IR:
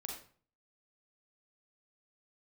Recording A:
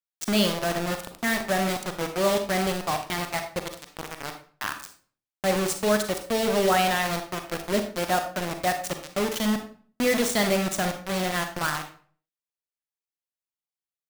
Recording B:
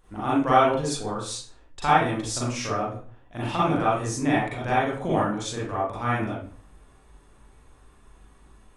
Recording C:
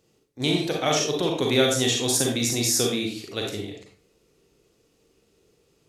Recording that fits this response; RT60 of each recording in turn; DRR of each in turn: C; 0.45, 0.45, 0.45 s; 6.0, -8.5, -0.5 dB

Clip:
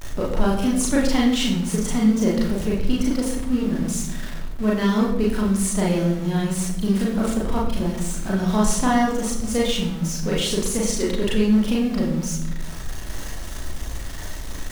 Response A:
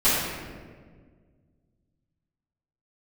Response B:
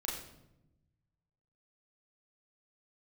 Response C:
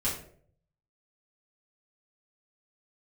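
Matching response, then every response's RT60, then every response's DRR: B; 1.7, 0.90, 0.55 s; -17.0, -4.5, -9.0 dB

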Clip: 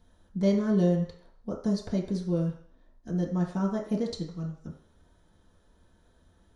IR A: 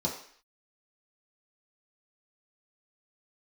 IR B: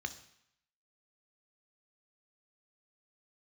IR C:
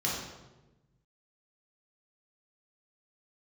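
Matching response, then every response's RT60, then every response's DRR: A; 0.55, 0.75, 1.1 s; -4.0, 8.5, -5.5 dB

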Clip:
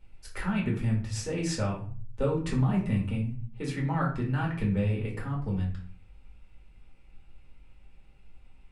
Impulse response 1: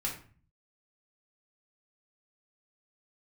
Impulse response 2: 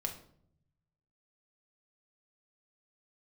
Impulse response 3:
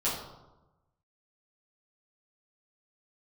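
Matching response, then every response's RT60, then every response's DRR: 1; 0.40, 0.65, 1.0 s; -4.0, 2.5, -10.5 dB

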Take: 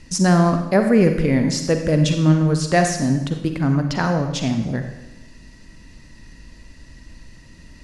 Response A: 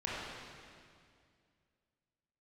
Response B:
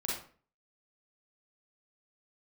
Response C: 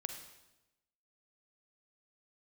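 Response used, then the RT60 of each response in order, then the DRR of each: C; 2.2, 0.45, 1.0 s; -7.5, -5.0, 5.5 dB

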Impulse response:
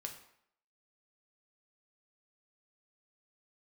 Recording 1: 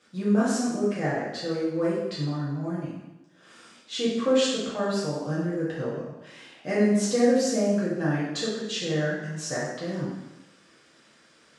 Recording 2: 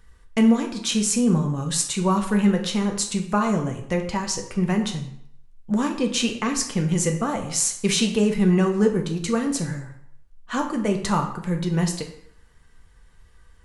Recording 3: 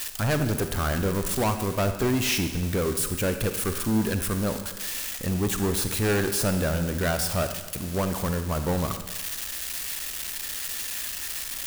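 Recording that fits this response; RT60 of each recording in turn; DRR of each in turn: 2; 0.95, 0.70, 1.3 s; -9.0, 2.5, 8.0 dB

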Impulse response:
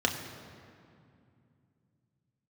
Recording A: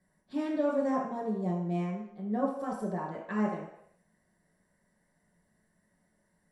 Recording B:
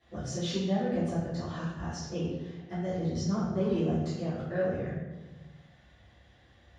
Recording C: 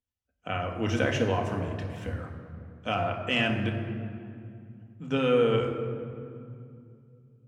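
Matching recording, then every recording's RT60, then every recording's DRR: C; 0.75, 1.2, 2.5 s; -4.0, -14.0, 1.5 dB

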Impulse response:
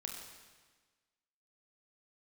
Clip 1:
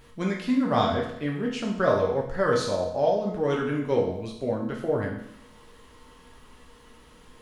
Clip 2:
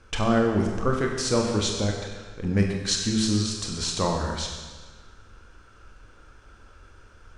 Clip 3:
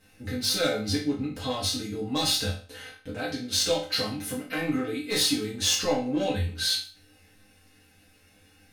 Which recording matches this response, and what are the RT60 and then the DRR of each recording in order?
2; 0.75, 1.4, 0.40 s; -2.5, 0.5, -8.0 dB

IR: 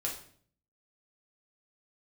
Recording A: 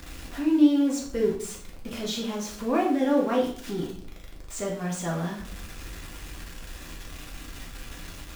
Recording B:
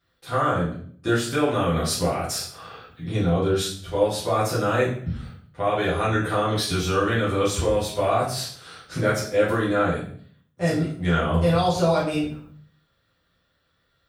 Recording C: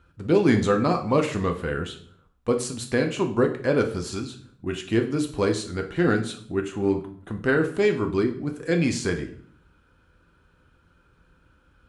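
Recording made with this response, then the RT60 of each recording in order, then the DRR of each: A; 0.55, 0.55, 0.55 s; -2.5, -8.5, 4.0 dB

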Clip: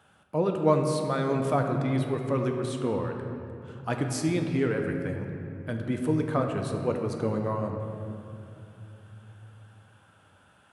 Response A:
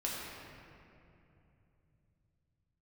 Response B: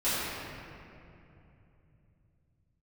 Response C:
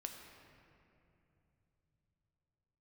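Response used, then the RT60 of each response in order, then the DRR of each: C; 2.8, 2.8, 2.8 s; -5.5, -15.5, 3.0 dB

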